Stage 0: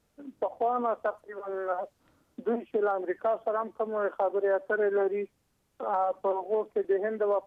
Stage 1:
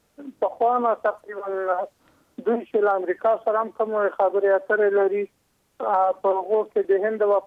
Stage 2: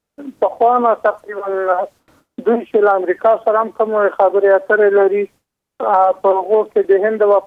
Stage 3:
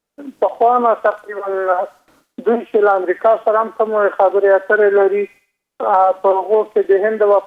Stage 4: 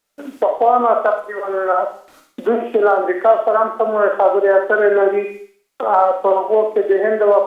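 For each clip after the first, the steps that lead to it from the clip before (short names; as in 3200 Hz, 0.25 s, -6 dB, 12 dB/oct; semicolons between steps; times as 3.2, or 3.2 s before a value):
low shelf 200 Hz -6 dB; gain +8 dB
gate with hold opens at -48 dBFS; gain +8 dB
bell 90 Hz -10 dB 1.4 oct; thin delay 60 ms, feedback 46%, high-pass 2500 Hz, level -6 dB
on a send at -4.5 dB: reverb RT60 0.40 s, pre-delay 5 ms; on the sum: mismatched tape noise reduction encoder only; gain -2 dB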